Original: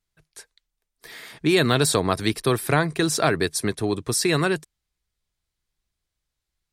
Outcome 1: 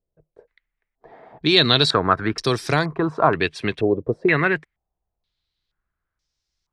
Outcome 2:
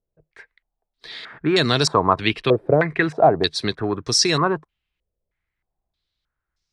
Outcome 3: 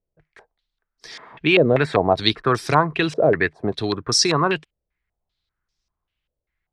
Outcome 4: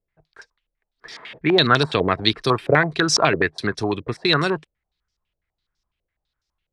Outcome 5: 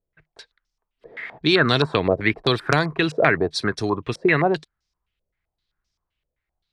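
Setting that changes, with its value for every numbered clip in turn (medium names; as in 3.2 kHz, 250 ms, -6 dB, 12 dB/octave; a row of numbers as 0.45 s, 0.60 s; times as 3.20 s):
step-sequenced low-pass, rate: 2.1 Hz, 3.2 Hz, 5.1 Hz, 12 Hz, 7.7 Hz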